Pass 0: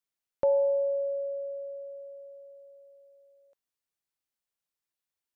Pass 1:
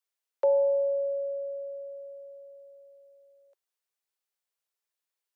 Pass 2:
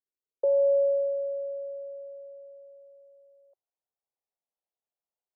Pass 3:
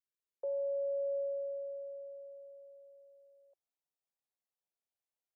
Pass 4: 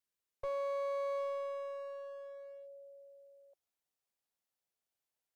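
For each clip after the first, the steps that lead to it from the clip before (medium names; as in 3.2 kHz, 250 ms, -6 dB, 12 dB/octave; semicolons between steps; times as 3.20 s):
steep high-pass 360 Hz 96 dB/octave; trim +1 dB
low-pass sweep 350 Hz -> 730 Hz, 0.05–1.15 s; trim -4.5 dB
peak limiter -26.5 dBFS, peak gain reduction 9 dB; trim -5 dB
one-sided clip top -52 dBFS, bottom -32 dBFS; trim +3 dB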